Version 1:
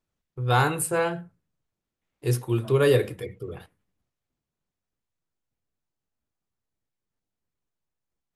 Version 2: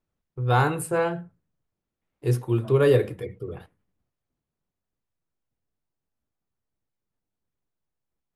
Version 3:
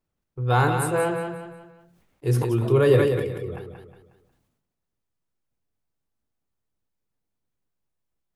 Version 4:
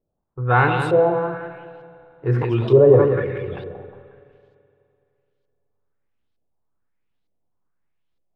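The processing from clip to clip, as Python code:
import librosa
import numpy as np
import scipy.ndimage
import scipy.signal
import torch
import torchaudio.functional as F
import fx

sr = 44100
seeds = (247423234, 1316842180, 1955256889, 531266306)

y1 = fx.high_shelf(x, sr, hz=2200.0, db=-8.5)
y1 = F.gain(torch.from_numpy(y1), 1.5).numpy()
y2 = fx.echo_feedback(y1, sr, ms=181, feedback_pct=28, wet_db=-6.5)
y2 = fx.sustainer(y2, sr, db_per_s=43.0)
y3 = fx.filter_lfo_lowpass(y2, sr, shape='saw_up', hz=1.1, low_hz=500.0, high_hz=4200.0, q=2.5)
y3 = fx.rev_spring(y3, sr, rt60_s=2.7, pass_ms=(42, 53), chirp_ms=25, drr_db=14.0)
y3 = F.gain(torch.from_numpy(y3), 2.0).numpy()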